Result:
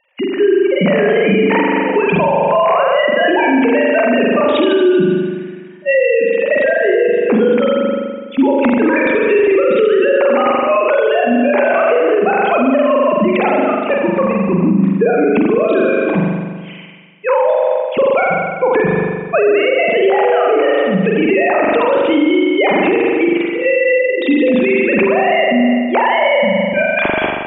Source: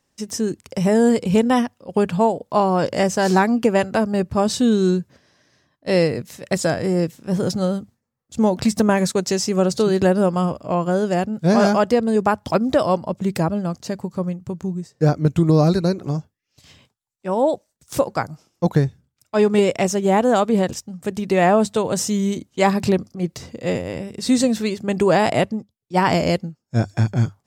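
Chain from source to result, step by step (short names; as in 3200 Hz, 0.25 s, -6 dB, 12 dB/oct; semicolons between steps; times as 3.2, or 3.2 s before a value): sine-wave speech; bell 2400 Hz +13.5 dB 0.49 oct; compressor, threshold -18 dBFS, peak gain reduction 12 dB; spring tank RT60 1.5 s, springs 41 ms, chirp 55 ms, DRR -2.5 dB; maximiser +15 dB; gain -4 dB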